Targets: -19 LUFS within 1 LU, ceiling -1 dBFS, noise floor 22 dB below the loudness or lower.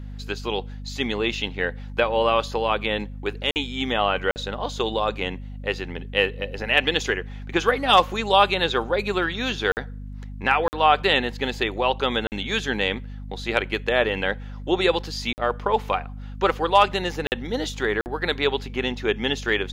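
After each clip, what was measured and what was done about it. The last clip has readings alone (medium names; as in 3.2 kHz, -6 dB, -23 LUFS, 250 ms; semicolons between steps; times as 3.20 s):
dropouts 8; longest dropout 49 ms; hum 50 Hz; highest harmonic 250 Hz; hum level -33 dBFS; loudness -23.5 LUFS; peak level -4.0 dBFS; loudness target -19.0 LUFS
-> interpolate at 3.51/4.31/9.72/10.68/12.27/15.33/17.27/18.01 s, 49 ms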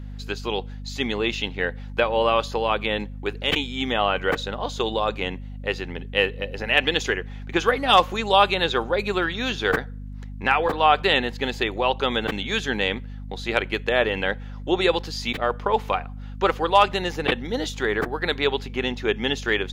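dropouts 0; hum 50 Hz; highest harmonic 250 Hz; hum level -33 dBFS
-> de-hum 50 Hz, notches 5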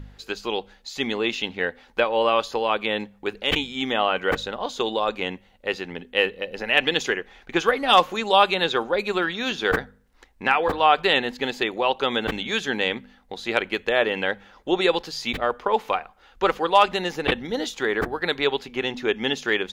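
hum not found; loudness -23.5 LUFS; peak level -4.0 dBFS; loudness target -19.0 LUFS
-> trim +4.5 dB; peak limiter -1 dBFS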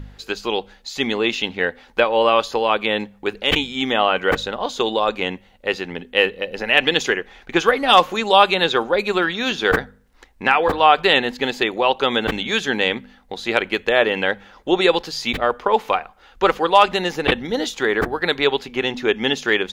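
loudness -19.0 LUFS; peak level -1.0 dBFS; noise floor -52 dBFS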